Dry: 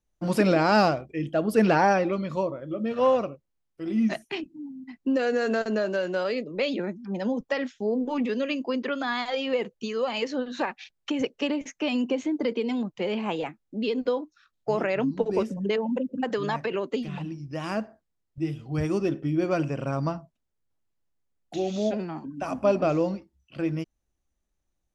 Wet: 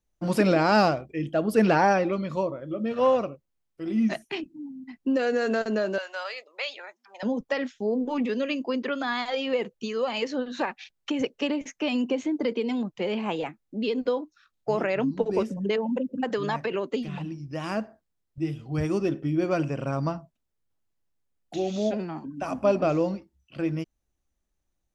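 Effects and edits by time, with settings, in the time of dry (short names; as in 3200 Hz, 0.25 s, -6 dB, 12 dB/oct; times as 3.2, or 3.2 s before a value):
5.98–7.23 HPF 750 Hz 24 dB/oct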